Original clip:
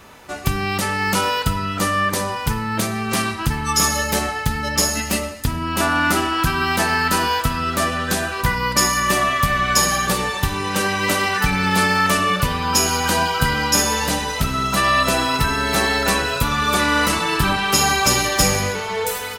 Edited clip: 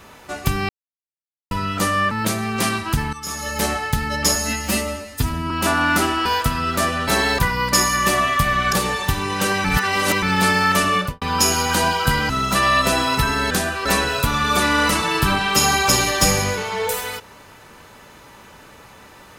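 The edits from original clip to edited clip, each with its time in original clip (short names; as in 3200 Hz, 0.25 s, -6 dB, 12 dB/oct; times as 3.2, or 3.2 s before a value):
0.69–1.51 mute
2.11–2.64 cut
3.66–4.19 fade in quadratic, from -15 dB
4.88–5.65 stretch 1.5×
6.4–7.25 cut
8.07–8.42 swap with 15.72–16.03
9.76–10.07 cut
10.99–11.57 reverse
12.31–12.56 studio fade out
13.64–14.51 cut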